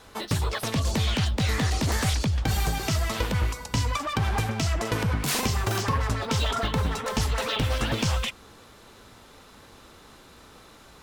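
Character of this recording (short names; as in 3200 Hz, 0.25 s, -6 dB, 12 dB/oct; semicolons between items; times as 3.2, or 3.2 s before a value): noise floor -51 dBFS; spectral tilt -4.5 dB/oct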